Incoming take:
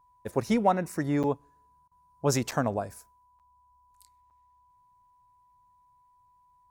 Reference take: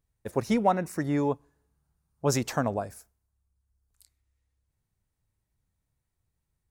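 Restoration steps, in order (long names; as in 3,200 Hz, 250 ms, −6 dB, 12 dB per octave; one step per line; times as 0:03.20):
notch filter 990 Hz, Q 30
repair the gap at 0:01.23/0:02.51/0:03.39/0:04.30, 7.7 ms
repair the gap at 0:01.88, 33 ms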